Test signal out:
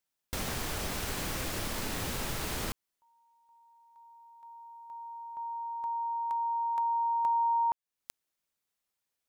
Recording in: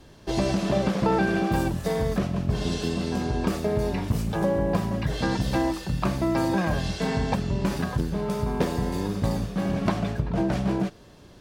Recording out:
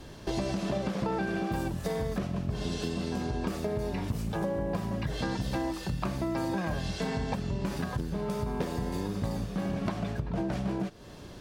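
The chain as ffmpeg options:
-af "acompressor=threshold=-36dB:ratio=3,volume=4dB"

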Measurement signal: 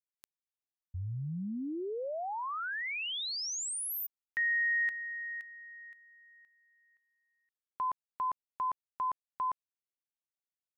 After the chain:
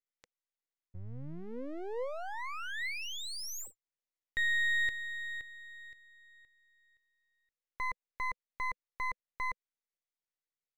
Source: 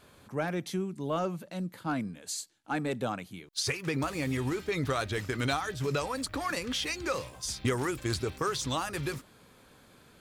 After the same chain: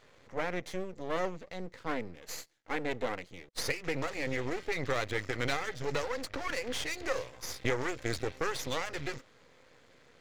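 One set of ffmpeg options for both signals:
-af "highpass=f=74:p=1,aresample=16000,aresample=44100,aeval=exprs='max(val(0),0)':c=same,equalizer=f=200:t=o:w=0.33:g=-6,equalizer=f=500:t=o:w=0.33:g=8,equalizer=f=2k:t=o:w=0.33:g=7"

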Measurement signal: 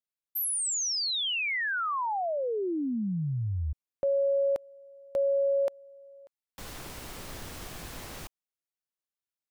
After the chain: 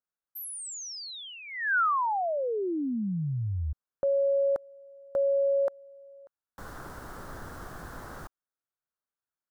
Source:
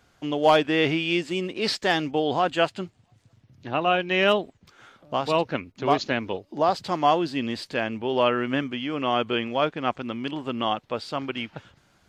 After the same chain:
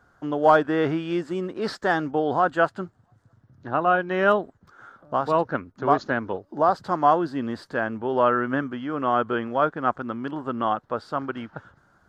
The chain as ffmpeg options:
-af "highshelf=f=1.9k:t=q:w=3:g=-8.5"

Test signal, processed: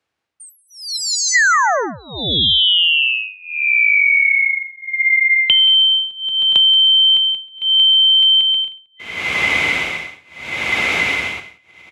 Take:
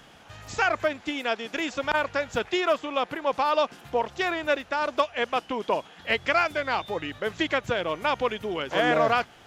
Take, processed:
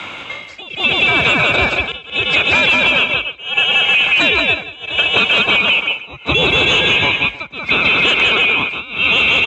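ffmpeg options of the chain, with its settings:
-af "afftfilt=real='real(if(lt(b,920),b+92*(1-2*mod(floor(b/92),2)),b),0)':imag='imag(if(lt(b,920),b+92*(1-2*mod(floor(b/92),2)),b),0)':win_size=2048:overlap=0.75,lowpass=2.3k,aecho=1:1:180|315|416.2|492.2|549.1:0.631|0.398|0.251|0.158|0.1,tremolo=f=0.73:d=0.98,apsyclip=29dB,crystalizer=i=1.5:c=0,acompressor=threshold=-7dB:ratio=6,afreqshift=48,volume=-3.5dB"

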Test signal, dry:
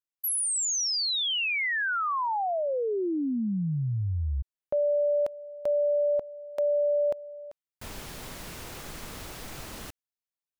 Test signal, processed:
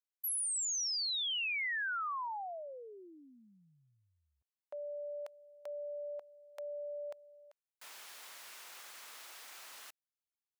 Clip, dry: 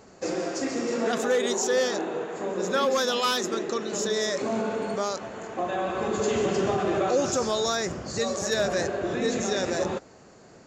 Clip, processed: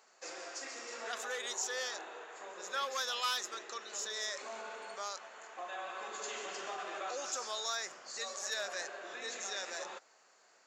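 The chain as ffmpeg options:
-af "highpass=1k,volume=-7.5dB"

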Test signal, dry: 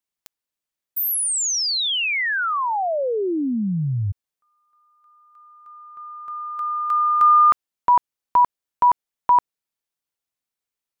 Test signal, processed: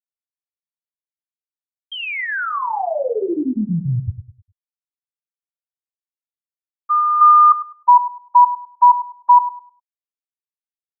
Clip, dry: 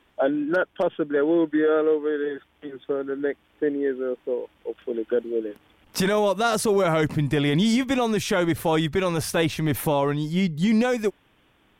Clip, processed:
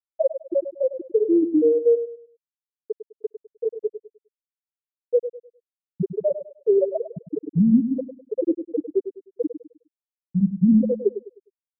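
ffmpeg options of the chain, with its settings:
-filter_complex "[0:a]afftfilt=real='re*gte(hypot(re,im),1)':imag='im*gte(hypot(re,im),1)':win_size=1024:overlap=0.75,asplit=2[a][b];[b]adelay=102,lowpass=f=910:p=1,volume=-10dB,asplit=2[c][d];[d]adelay=102,lowpass=f=910:p=1,volume=0.35,asplit=2[e][f];[f]adelay=102,lowpass=f=910:p=1,volume=0.35,asplit=2[g][h];[h]adelay=102,lowpass=f=910:p=1,volume=0.35[i];[a][c][e][g][i]amix=inputs=5:normalize=0,volume=6dB"

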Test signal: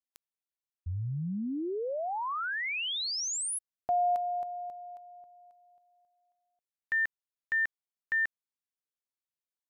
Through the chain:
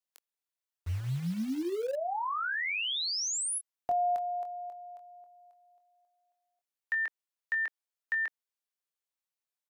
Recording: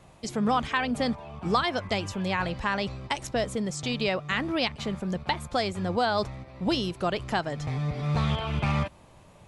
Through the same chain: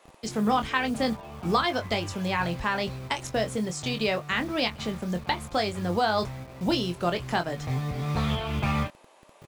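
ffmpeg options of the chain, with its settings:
-filter_complex "[0:a]asplit=2[a][b];[b]adelay=23,volume=-7.5dB[c];[a][c]amix=inputs=2:normalize=0,acrossover=split=340|1800[d][e][f];[d]acrusher=bits=7:mix=0:aa=0.000001[g];[g][e][f]amix=inputs=3:normalize=0"

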